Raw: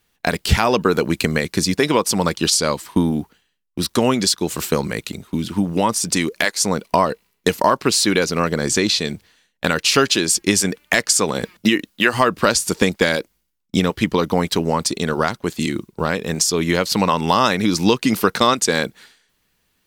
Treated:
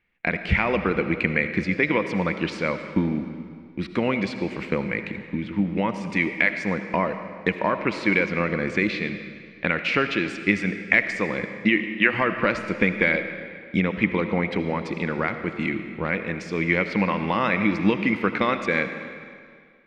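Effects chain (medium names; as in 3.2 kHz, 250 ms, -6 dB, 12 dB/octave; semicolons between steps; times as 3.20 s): resonant low-pass 2.2 kHz, resonance Q 6.4; bass shelf 100 Hz +6 dB; small resonant body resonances 200/320/510 Hz, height 7 dB; on a send: reverberation RT60 2.1 s, pre-delay 35 ms, DRR 8.5 dB; on the sum: trim -11 dB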